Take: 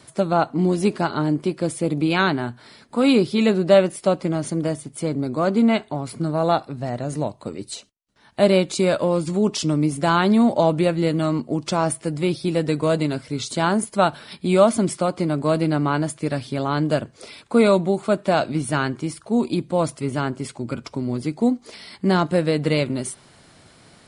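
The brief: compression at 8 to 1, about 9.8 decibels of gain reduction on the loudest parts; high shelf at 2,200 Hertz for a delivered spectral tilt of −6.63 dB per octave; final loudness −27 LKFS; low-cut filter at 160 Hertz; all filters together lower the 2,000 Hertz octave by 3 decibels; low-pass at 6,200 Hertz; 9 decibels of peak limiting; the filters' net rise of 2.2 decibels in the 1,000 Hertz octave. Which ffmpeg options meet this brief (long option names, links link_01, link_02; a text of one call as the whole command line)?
ffmpeg -i in.wav -af "highpass=160,lowpass=6200,equalizer=frequency=1000:width_type=o:gain=5,equalizer=frequency=2000:width_type=o:gain=-3,highshelf=frequency=2200:gain=-7,acompressor=threshold=-18dB:ratio=8,volume=0.5dB,alimiter=limit=-16dB:level=0:latency=1" out.wav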